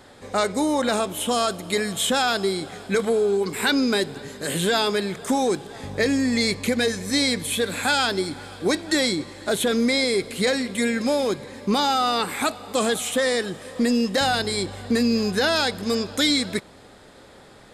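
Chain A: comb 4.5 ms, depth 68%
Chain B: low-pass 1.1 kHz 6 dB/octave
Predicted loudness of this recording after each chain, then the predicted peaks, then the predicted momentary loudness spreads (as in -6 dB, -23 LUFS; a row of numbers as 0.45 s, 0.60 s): -20.5 LUFS, -25.5 LUFS; -6.5 dBFS, -13.5 dBFS; 8 LU, 7 LU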